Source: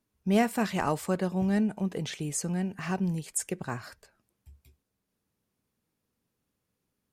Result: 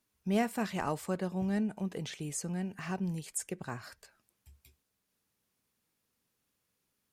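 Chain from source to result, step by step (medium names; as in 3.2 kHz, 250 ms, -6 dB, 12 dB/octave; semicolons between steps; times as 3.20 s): tape noise reduction on one side only encoder only; trim -5.5 dB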